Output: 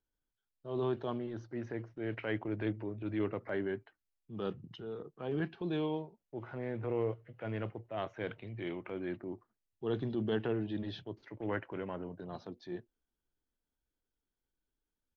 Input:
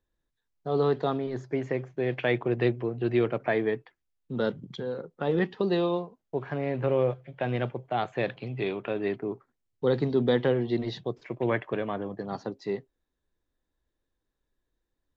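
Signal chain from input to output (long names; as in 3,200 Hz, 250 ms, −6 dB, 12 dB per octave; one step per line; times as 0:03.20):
transient designer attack −6 dB, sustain +1 dB
pitch shifter −2 semitones
level −8 dB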